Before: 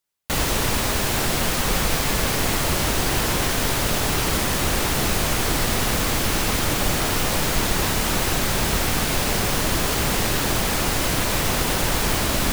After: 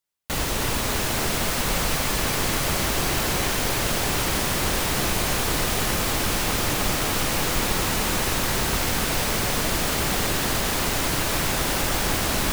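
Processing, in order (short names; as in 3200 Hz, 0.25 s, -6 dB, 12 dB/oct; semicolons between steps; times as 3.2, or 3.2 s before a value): thinning echo 0.303 s, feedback 81%, high-pass 190 Hz, level -6.5 dB; gain -3.5 dB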